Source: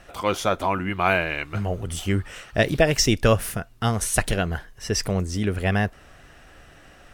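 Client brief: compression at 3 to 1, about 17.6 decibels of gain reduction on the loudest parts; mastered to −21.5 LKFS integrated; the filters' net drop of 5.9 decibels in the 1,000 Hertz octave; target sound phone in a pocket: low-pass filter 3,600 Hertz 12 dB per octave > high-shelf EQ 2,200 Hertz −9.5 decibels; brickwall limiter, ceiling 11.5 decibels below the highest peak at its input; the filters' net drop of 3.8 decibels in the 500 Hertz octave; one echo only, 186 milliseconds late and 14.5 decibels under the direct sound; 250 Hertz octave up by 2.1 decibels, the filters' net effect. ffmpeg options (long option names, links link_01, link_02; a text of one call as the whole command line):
ffmpeg -i in.wav -af "equalizer=frequency=250:width_type=o:gain=4,equalizer=frequency=500:width_type=o:gain=-3.5,equalizer=frequency=1000:width_type=o:gain=-5,acompressor=threshold=-39dB:ratio=3,alimiter=level_in=10dB:limit=-24dB:level=0:latency=1,volume=-10dB,lowpass=3600,highshelf=frequency=2200:gain=-9.5,aecho=1:1:186:0.188,volume=25dB" out.wav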